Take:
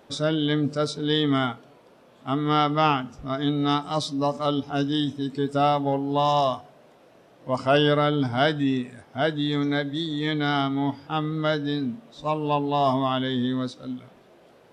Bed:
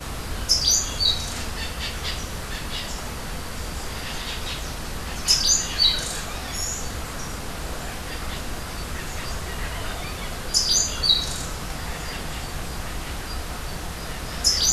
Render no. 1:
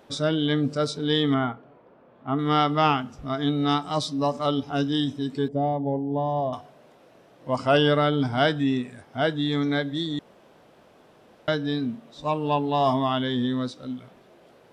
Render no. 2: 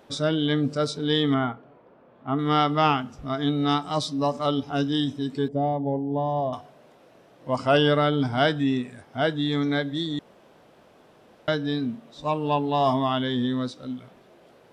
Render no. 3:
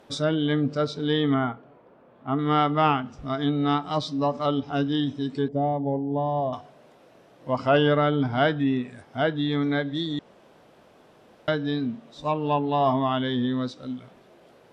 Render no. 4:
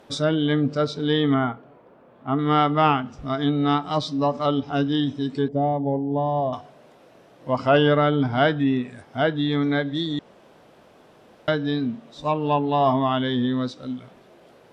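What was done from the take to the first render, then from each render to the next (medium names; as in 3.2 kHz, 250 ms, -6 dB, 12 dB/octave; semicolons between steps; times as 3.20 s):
1.34–2.39 s: low-pass 1.7 kHz; 5.48–6.53 s: boxcar filter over 33 samples; 10.19–11.48 s: room tone
no audible change
low-pass that closes with the level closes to 2.8 kHz, closed at -19.5 dBFS
trim +2.5 dB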